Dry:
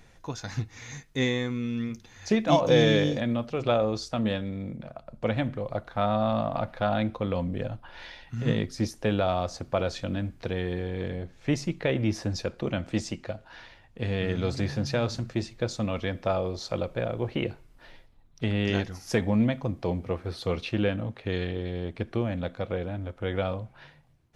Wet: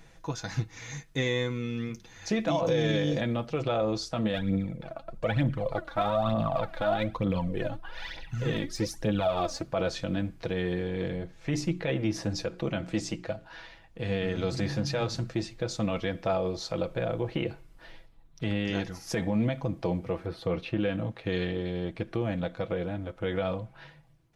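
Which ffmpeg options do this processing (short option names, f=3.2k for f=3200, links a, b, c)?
-filter_complex "[0:a]asplit=3[a][b][c];[a]afade=t=out:st=4.33:d=0.02[d];[b]aphaser=in_gain=1:out_gain=1:delay=3.7:decay=0.65:speed=1.1:type=triangular,afade=t=in:st=4.33:d=0.02,afade=t=out:st=9.62:d=0.02[e];[c]afade=t=in:st=9.62:d=0.02[f];[d][e][f]amix=inputs=3:normalize=0,asettb=1/sr,asplit=3[g][h][i];[g]atrim=end=11.374[j];[h]atrim=start=11.37:end=15.04,asetpts=PTS-STARTPTS,afade=t=in:d=0.004:c=qsin,afade=t=out:st=3.666:d=0.004:c=qsin,bandreject=f=60:t=h:w=6,bandreject=f=120:t=h:w=6,bandreject=f=180:t=h:w=6,bandreject=f=240:t=h:w=6,bandreject=f=300:t=h:w=6,bandreject=f=360:t=h:w=6,bandreject=f=420:t=h:w=6[k];[i]atrim=start=15.036[l];[j][k]acrossfade=d=0.004:c1=hsin:c2=qsin[m];[m][l]acrossfade=d=0.004:c1=qsin:c2=hsin,asettb=1/sr,asplit=3[n][o][p];[n]atrim=end=20.264[q];[o]atrim=start=20.26:end=20.8,asetpts=PTS-STARTPTS,afade=t=in:d=0.004:c=qsin,afade=t=out:st=0.536:d=0.004:c=qsin,equalizer=f=7.1k:t=o:w=2.2:g=-11.5[r];[p]atrim=start=20.796[s];[q][r]acrossfade=d=0.004:c1=hsin:c2=qsin[t];[t][s]acrossfade=d=0.004:c1=qsin:c2=hsin,aecho=1:1:6.1:0.45,alimiter=limit=-18dB:level=0:latency=1:release=66"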